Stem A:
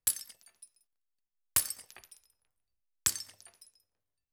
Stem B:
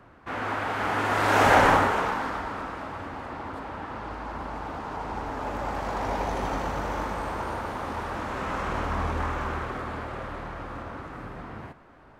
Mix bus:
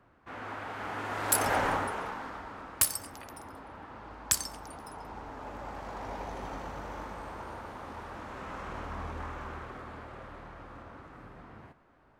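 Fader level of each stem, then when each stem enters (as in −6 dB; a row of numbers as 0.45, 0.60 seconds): +2.0, −10.5 decibels; 1.25, 0.00 seconds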